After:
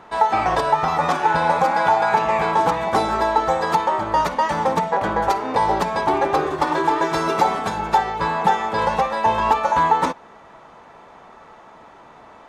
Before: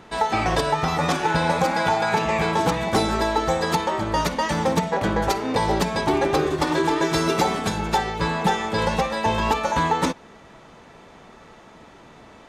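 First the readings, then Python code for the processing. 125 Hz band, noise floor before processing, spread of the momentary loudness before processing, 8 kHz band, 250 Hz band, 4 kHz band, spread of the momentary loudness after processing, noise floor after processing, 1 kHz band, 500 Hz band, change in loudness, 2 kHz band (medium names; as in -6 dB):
-5.0 dB, -47 dBFS, 3 LU, -5.5 dB, -3.5 dB, -4.0 dB, 3 LU, -46 dBFS, +5.5 dB, +1.0 dB, +2.5 dB, +1.0 dB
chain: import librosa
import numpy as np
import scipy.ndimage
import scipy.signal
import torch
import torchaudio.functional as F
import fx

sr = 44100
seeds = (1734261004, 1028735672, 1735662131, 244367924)

y = fx.peak_eq(x, sr, hz=950.0, db=12.0, octaves=2.0)
y = y * 10.0 ** (-6.0 / 20.0)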